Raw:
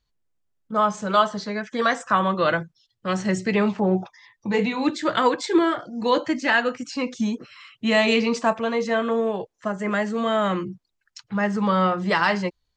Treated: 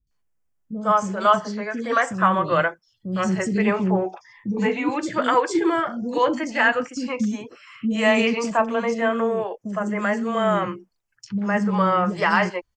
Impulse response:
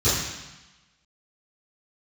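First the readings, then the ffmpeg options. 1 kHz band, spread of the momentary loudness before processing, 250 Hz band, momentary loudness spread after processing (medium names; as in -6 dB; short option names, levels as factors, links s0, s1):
+2.0 dB, 9 LU, +0.5 dB, 10 LU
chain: -filter_complex "[0:a]equalizer=f=3900:w=5.4:g=-13,acrossover=split=350|3800[s0][s1][s2];[s2]adelay=70[s3];[s1]adelay=110[s4];[s0][s4][s3]amix=inputs=3:normalize=0,volume=1.26"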